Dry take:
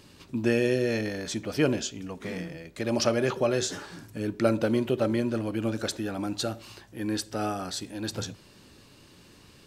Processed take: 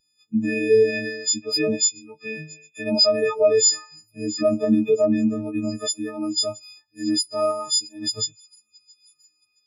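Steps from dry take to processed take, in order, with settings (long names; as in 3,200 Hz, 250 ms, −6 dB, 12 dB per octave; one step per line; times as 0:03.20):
every partial snapped to a pitch grid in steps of 6 semitones
on a send: delay with a high-pass on its return 671 ms, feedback 81%, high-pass 2,900 Hz, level −16 dB
on the sum: boost into a limiter +17.5 dB
every bin expanded away from the loudest bin 2.5 to 1
level −7 dB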